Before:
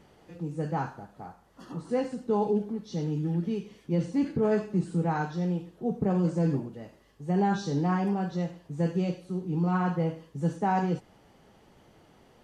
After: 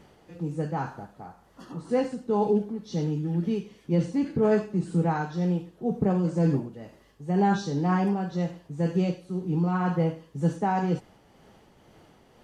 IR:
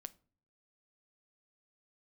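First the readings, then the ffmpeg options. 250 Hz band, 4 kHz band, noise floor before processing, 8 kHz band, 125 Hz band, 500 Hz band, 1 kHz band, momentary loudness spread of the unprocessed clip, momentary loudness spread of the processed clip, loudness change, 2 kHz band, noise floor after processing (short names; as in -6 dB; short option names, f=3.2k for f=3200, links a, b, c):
+2.0 dB, +2.0 dB, -60 dBFS, n/a, +2.0 dB, +2.5 dB, +1.5 dB, 11 LU, 11 LU, +2.0 dB, +1.5 dB, -58 dBFS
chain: -af "tremolo=f=2:d=0.34,volume=3.5dB"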